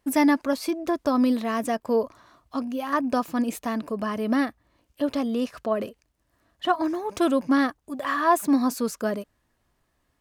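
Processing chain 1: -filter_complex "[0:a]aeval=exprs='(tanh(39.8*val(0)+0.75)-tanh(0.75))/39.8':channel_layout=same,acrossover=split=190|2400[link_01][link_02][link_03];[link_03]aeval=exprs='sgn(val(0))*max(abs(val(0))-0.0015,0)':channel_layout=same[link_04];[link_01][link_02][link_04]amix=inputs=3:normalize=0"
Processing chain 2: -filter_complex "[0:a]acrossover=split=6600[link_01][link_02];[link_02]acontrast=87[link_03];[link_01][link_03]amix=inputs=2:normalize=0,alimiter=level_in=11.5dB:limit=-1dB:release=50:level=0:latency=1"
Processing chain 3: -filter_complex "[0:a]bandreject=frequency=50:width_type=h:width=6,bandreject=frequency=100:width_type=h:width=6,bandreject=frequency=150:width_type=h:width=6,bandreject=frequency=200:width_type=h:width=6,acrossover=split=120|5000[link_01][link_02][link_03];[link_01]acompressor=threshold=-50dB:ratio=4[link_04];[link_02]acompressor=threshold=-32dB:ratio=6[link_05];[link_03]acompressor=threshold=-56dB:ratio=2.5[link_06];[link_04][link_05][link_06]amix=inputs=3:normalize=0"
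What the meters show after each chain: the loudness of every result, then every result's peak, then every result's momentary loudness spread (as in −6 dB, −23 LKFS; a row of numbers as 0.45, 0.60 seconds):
−36.5, −14.0, −36.0 LKFS; −22.0, −1.0, −20.0 dBFS; 6, 9, 5 LU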